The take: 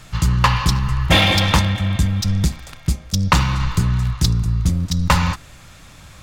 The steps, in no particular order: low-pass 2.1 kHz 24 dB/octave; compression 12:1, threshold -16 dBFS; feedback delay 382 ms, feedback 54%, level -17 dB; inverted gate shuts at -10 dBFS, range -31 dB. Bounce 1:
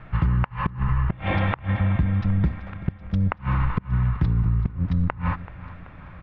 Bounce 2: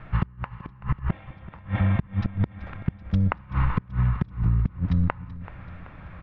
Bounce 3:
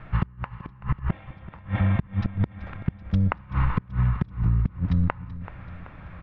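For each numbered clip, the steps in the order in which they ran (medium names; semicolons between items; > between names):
compression > low-pass > inverted gate > feedback delay; low-pass > inverted gate > compression > feedback delay; low-pass > inverted gate > feedback delay > compression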